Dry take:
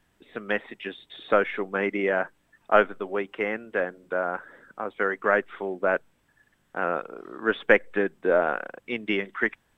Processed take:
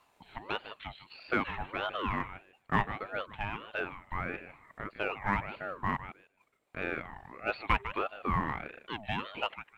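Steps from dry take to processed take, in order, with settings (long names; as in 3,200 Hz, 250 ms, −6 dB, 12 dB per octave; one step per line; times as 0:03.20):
downward expander −55 dBFS
upward compression, threshold −39 dBFS
on a send: feedback echo with a high-pass in the loop 152 ms, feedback 17%, high-pass 550 Hz, level −11 dB
on the sum: floating-point word with a short mantissa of 6 bits
in parallel at −10 dB: soft clipping −21 dBFS, distortion −7 dB
on the sum: ring modulator whose carrier an LFO sweeps 720 Hz, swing 45%, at 1.6 Hz
level −7.5 dB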